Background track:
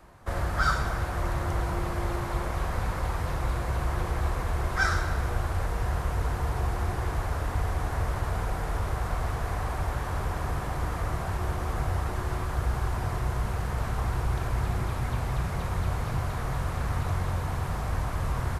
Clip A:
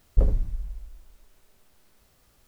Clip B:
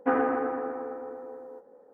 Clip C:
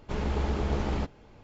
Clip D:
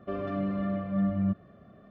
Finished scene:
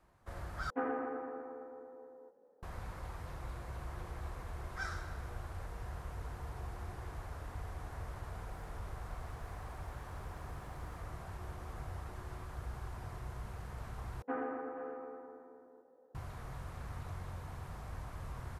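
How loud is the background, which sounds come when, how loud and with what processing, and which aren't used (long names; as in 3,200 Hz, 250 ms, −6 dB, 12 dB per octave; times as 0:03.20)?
background track −15.5 dB
0:00.70: overwrite with B −11.5 dB
0:08.51: mix in A −14.5 dB + downward compressor, threshold −35 dBFS
0:14.22: overwrite with B −13.5 dB + single-tap delay 481 ms −12 dB
not used: C, D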